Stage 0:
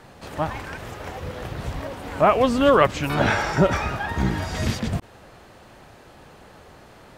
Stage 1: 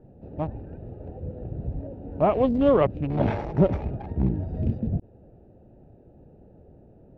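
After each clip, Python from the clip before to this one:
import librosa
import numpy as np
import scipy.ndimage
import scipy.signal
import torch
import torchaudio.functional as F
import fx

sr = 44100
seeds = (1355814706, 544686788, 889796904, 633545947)

y = fx.wiener(x, sr, points=41)
y = scipy.signal.sosfilt(scipy.signal.butter(2, 2000.0, 'lowpass', fs=sr, output='sos'), y)
y = fx.peak_eq(y, sr, hz=1500.0, db=-14.0, octaves=1.2)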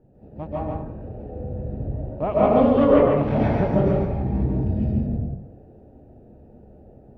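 y = x + 10.0 ** (-3.5 / 20.0) * np.pad(x, (int(142 * sr / 1000.0), 0))[:len(x)]
y = fx.rev_plate(y, sr, seeds[0], rt60_s=0.76, hf_ratio=0.55, predelay_ms=120, drr_db=-7.5)
y = y * 10.0 ** (-5.5 / 20.0)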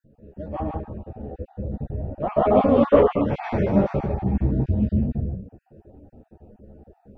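y = fx.spec_dropout(x, sr, seeds[1], share_pct=29)
y = fx.ensemble(y, sr)
y = y * 10.0 ** (4.0 / 20.0)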